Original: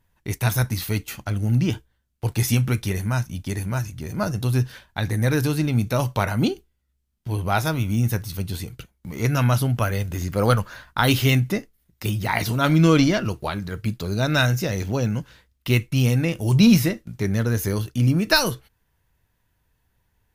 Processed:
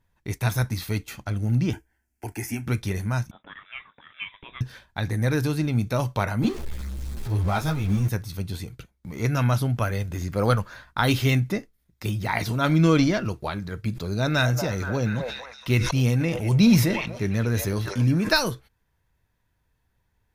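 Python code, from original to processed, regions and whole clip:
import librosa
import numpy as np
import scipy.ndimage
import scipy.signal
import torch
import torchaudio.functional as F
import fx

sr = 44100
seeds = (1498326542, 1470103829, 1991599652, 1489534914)

y = fx.chain(x, sr, fx.low_shelf(hz=67.0, db=-8.5),
    fx.fixed_phaser(hz=770.0, stages=8),
    fx.band_squash(depth_pct=40), at=(1.73, 2.67))
y = fx.chain(y, sr, fx.highpass(hz=1000.0, slope=12),
    fx.freq_invert(carrier_hz=3700), at=(3.31, 4.61))
y = fx.chain(y, sr, fx.zero_step(step_db=-26.5),
    fx.low_shelf(hz=110.0, db=8.5),
    fx.ensemble(), at=(6.42, 8.09))
y = fx.chain(y, sr, fx.echo_stepped(ms=237, hz=730.0, octaves=0.7, feedback_pct=70, wet_db=-5.5),
    fx.sustainer(db_per_s=53.0), at=(13.91, 18.33))
y = fx.high_shelf(y, sr, hz=9000.0, db=-7.5)
y = fx.notch(y, sr, hz=2900.0, q=13.0)
y = y * 10.0 ** (-2.5 / 20.0)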